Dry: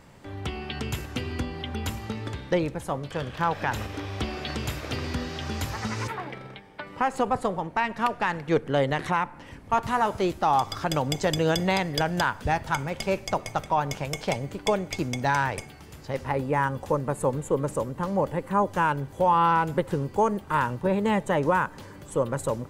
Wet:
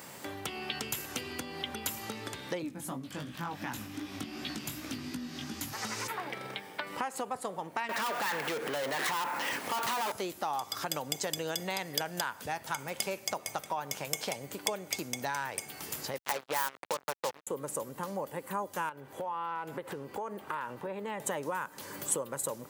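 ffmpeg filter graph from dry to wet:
-filter_complex "[0:a]asettb=1/sr,asplit=3[a][b][c];[a]atrim=end=2.624[d];[b]atrim=start=2.62:end=5.73,asetpts=PTS-STARTPTS,afade=t=in:d=0.004:c=qsin,afade=t=out:st=3.106:d=0.004:c=qsin,lowshelf=f=350:t=q:w=3:g=7.5,flanger=delay=15.5:depth=5.8:speed=2.7[e];[c]atrim=start=5.726[f];[d][e]acrossfade=d=0.004:c1=hsin:c2=qsin[g];[g][f]acrossfade=d=0.004:c1=qsin:c2=hsin,asettb=1/sr,asplit=3[h][i][j];[h]atrim=end=7.894[k];[i]atrim=start=7.89:end=10.12,asetpts=PTS-STARTPTS,afade=t=in:d=0.004:c=qsin,afade=t=out:st=2.226:d=0.004:c=qsin,asplit=2[l][m];[m]highpass=f=720:p=1,volume=30dB,asoftclip=type=tanh:threshold=-12dB[n];[l][n]amix=inputs=2:normalize=0,lowpass=f=3.7k:p=1,volume=-6dB,aeval=exprs='sgn(val(0))*max(abs(val(0))-0.00562,0)':c=same,acompressor=threshold=-24dB:ratio=3:attack=3.2:release=140:knee=1:detection=peak[o];[j]atrim=start=10.116[p];[k][o]acrossfade=d=0.004:c1=hsin:c2=qsin[q];[q][p]acrossfade=d=0.004:c1=qsin:c2=hsin,asettb=1/sr,asplit=3[r][s][t];[r]atrim=end=16.184[u];[s]atrim=start=16.18:end=17.47,asetpts=PTS-STARTPTS,afade=t=in:d=0.004:c=qsin,afade=t=out:st=1.286:d=0.004:c=qsin,acrossover=split=490 4200:gain=0.251 1 0.112[v][w][x];[v][w][x]amix=inputs=3:normalize=0,acontrast=48,acrusher=bits=3:mix=0:aa=0.5[y];[t]atrim=start=17.466[z];[u][y]acrossfade=d=0.004:c1=hsin:c2=qsin[aa];[aa][z]acrossfade=d=0.004:c1=qsin:c2=hsin,asettb=1/sr,asplit=3[ab][ac][ad];[ab]atrim=end=18.894[ae];[ac]atrim=start=18.89:end=21.2,asetpts=PTS-STARTPTS,afade=t=in:d=0.004:c=qsin,afade=t=out:st=2.306:d=0.004:c=qsin,bass=f=250:g=-5,treble=f=4k:g=-13,acompressor=threshold=-32dB:ratio=3:attack=3.2:release=140:knee=1:detection=peak[af];[ad]atrim=start=21.196[ag];[ae][af]acrossfade=d=0.004:c1=hsin:c2=qsin[ah];[ah][ag]acrossfade=d=0.004:c1=qsin:c2=hsin,acompressor=threshold=-40dB:ratio=4,highpass=100,aemphasis=mode=production:type=bsi,volume=5.5dB"

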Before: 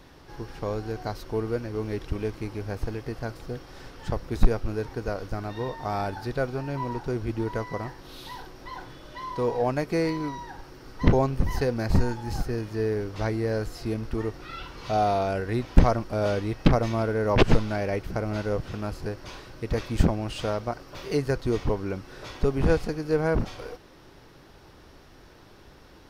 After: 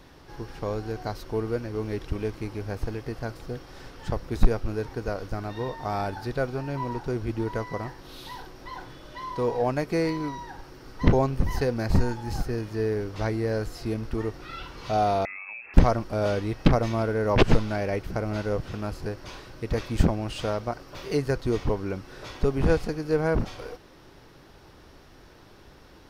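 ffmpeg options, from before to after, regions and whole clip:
-filter_complex "[0:a]asettb=1/sr,asplit=3[a][b][c];[a]atrim=end=15.254[d];[b]atrim=start=15.25:end=15.74,asetpts=PTS-STARTPTS,afade=t=in:d=0.004:c=qsin,afade=t=out:st=0.486:d=0.004:c=qsin,equalizer=f=1.4k:w=4.2:g=-3,acompressor=threshold=-35dB:ratio=16:attack=3.2:release=140:knee=1:detection=peak,lowpass=f=2.3k:t=q:w=0.5098,lowpass=f=2.3k:t=q:w=0.6013,lowpass=f=2.3k:t=q:w=0.9,lowpass=f=2.3k:t=q:w=2.563,afreqshift=-2700[e];[c]atrim=start=15.736[f];[d][e]acrossfade=d=0.004:c1=hsin:c2=qsin[g];[g][f]acrossfade=d=0.004:c1=qsin:c2=hsin"

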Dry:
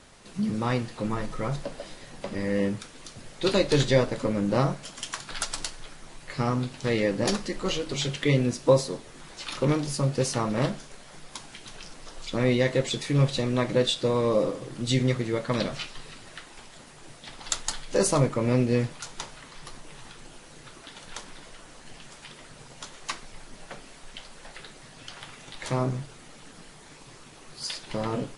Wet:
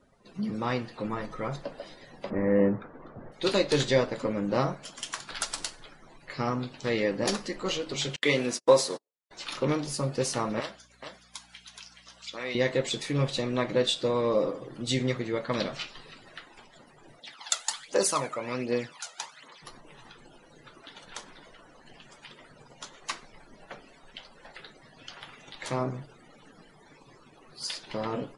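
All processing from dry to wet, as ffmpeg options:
-filter_complex "[0:a]asettb=1/sr,asplit=3[a][b][c];[a]atrim=end=2.304[d];[b]atrim=start=2.3:end=3.32,asetpts=PTS-STARTPTS,afade=t=in:d=0.004:c=qsin,afade=t=out:st=1.016:d=0.004:c=qsin,lowpass=1.3k,acontrast=65[e];[c]atrim=start=3.316[f];[d][e]acrossfade=d=0.004:c1=hsin:c2=qsin[g];[g][f]acrossfade=d=0.004:c1=qsin:c2=hsin,asettb=1/sr,asplit=3[h][i][j];[h]atrim=end=8.164[k];[i]atrim=start=8.16:end=9.31,asetpts=PTS-STARTPTS,afade=t=in:d=0.004:c=qsin,afade=t=out:st=1.146:d=0.004:c=qsin,highpass=f=520:p=1,agate=range=-39dB:threshold=-40dB:ratio=16:release=100:detection=peak,acontrast=34[l];[j]atrim=start=9.306[m];[k][l]acrossfade=d=0.004:c1=hsin:c2=qsin[n];[n][m]acrossfade=d=0.004:c1=qsin:c2=hsin,asettb=1/sr,asplit=3[o][p][q];[o]atrim=end=10.604[r];[p]atrim=start=10.6:end=12.55,asetpts=PTS-STARTPTS,afade=t=in:d=0.004:c=qsin,afade=t=out:st=1.946:d=0.004:c=qsin,highpass=f=1.4k:p=1,aeval=exprs='val(0)+0.002*(sin(2*PI*60*n/s)+sin(2*PI*2*60*n/s)/2+sin(2*PI*3*60*n/s)/3+sin(2*PI*4*60*n/s)/4+sin(2*PI*5*60*n/s)/5)':c=same,aecho=1:1:422:0.501,atrim=end_sample=85995[s];[q]atrim=start=12.546[t];[r][s]acrossfade=d=0.004:c1=hsin:c2=qsin[u];[u][t]acrossfade=d=0.004:c1=qsin:c2=hsin,asettb=1/sr,asplit=3[v][w][x];[v]atrim=end=17.194[y];[w]atrim=start=17.19:end=19.62,asetpts=PTS-STARTPTS,afade=t=in:d=0.004:c=qsin,afade=t=out:st=2.426:d=0.004:c=qsin,highpass=f=630:p=1,aphaser=in_gain=1:out_gain=1:delay=1.6:decay=0.49:speed=1.3:type=triangular[z];[x]atrim=start=19.616[aa];[y][z]acrossfade=d=0.004:c1=hsin:c2=qsin[ab];[ab][aa]acrossfade=d=0.004:c1=qsin:c2=hsin,afftdn=nr=20:nf=-50,lowshelf=f=140:g=-10.5,volume=-1dB"

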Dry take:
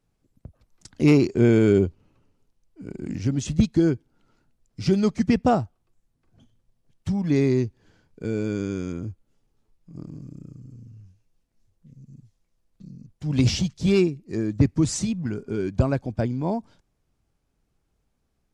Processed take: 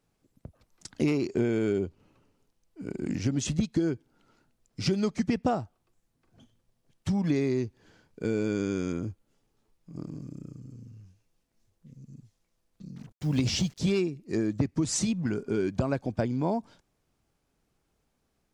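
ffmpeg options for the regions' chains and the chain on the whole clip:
-filter_complex "[0:a]asettb=1/sr,asplit=3[a][b][c];[a]atrim=end=12.964[d];[b]atrim=start=12.96:end=13.79,asetpts=PTS-STARTPTS,afade=t=in:d=0.004:c=qsin,afade=t=out:st=0.826:d=0.004:c=qsin,lowshelf=f=150:g=2,acrusher=bits=8:mix=0:aa=0.5[e];[c]atrim=start=13.786[f];[d][e]acrossfade=d=0.004:c1=hsin:c2=qsin[g];[g][f]acrossfade=d=0.004:c1=qsin:c2=hsin,lowshelf=f=130:g=-9.5,acompressor=threshold=-25dB:ratio=12,volume=2.5dB"

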